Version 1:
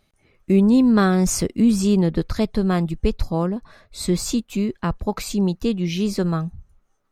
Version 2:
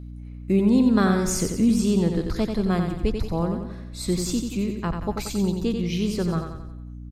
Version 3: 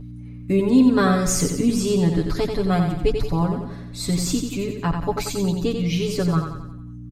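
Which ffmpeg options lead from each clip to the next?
-af "aecho=1:1:90|180|270|360|450|540:0.501|0.246|0.12|0.059|0.0289|0.0142,aeval=exprs='val(0)+0.0251*(sin(2*PI*60*n/s)+sin(2*PI*2*60*n/s)/2+sin(2*PI*3*60*n/s)/3+sin(2*PI*4*60*n/s)/4+sin(2*PI*5*60*n/s)/5)':c=same,volume=0.631"
-af "aecho=1:1:7:0.99,volume=1.12"

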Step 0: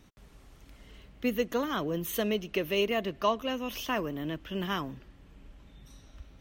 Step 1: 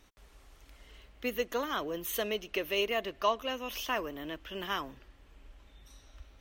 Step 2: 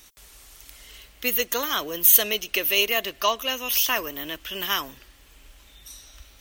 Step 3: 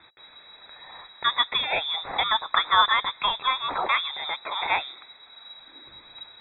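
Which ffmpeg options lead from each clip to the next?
-af "equalizer=f=160:w=0.82:g=-14"
-af "crystalizer=i=6.5:c=0,volume=1.33"
-af "asuperstop=centerf=900:order=8:qfactor=1.2,lowpass=f=3300:t=q:w=0.5098,lowpass=f=3300:t=q:w=0.6013,lowpass=f=3300:t=q:w=0.9,lowpass=f=3300:t=q:w=2.563,afreqshift=-3900,volume=1.58"

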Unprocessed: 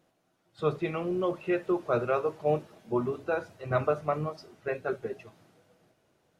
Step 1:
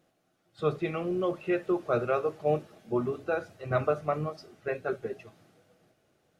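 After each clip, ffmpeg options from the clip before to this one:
-af "bandreject=f=960:w=7.4"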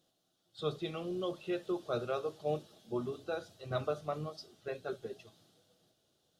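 -af "highshelf=f=2800:t=q:w=3:g=7,volume=0.422"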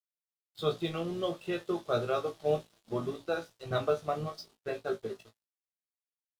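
-filter_complex "[0:a]aeval=exprs='sgn(val(0))*max(abs(val(0))-0.00141,0)':c=same,asplit=2[s0][s1];[s1]aecho=0:1:18|36:0.562|0.2[s2];[s0][s2]amix=inputs=2:normalize=0,volume=1.68"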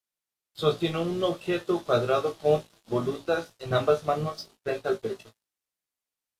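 -af "volume=2.11" -ar 32000 -c:a aac -b:a 64k

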